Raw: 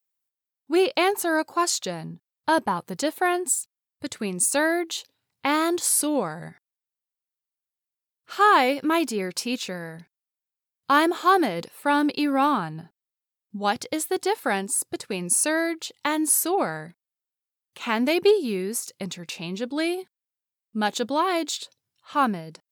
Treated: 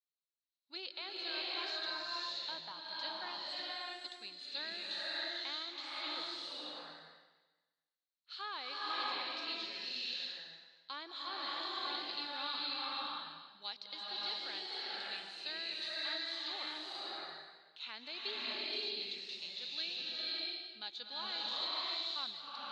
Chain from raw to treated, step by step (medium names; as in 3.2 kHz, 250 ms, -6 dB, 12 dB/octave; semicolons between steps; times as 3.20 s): de-esser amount 80%; band-pass filter 4.1 kHz, Q 7.2; distance through air 160 m; swelling reverb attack 610 ms, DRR -6 dB; trim +5 dB